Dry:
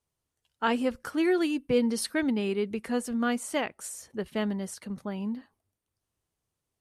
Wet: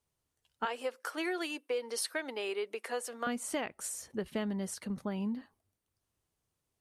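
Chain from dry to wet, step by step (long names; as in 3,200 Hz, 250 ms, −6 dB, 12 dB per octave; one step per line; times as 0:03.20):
0:00.65–0:03.27: high-pass filter 440 Hz 24 dB per octave
downward compressor 6 to 1, threshold −31 dBFS, peak gain reduction 9.5 dB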